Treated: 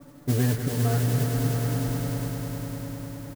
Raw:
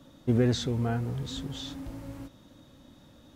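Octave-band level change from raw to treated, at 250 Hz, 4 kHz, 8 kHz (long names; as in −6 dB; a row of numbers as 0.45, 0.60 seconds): +2.0, −1.0, +9.0 decibels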